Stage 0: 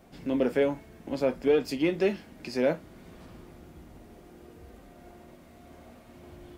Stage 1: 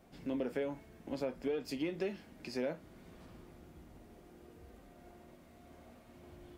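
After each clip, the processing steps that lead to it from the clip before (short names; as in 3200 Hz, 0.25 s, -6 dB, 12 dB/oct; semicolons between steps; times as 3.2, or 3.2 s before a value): compressor 6:1, threshold -26 dBFS, peak gain reduction 7.5 dB; gain -6.5 dB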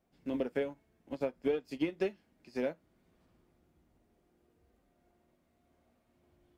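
upward expander 2.5:1, over -46 dBFS; gain +6 dB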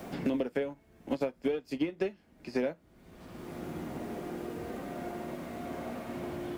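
three-band squash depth 100%; gain +4.5 dB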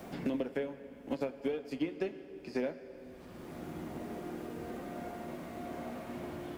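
plate-style reverb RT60 4 s, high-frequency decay 0.75×, DRR 11 dB; gain -3.5 dB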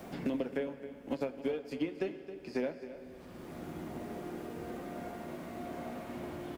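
echo 0.268 s -14 dB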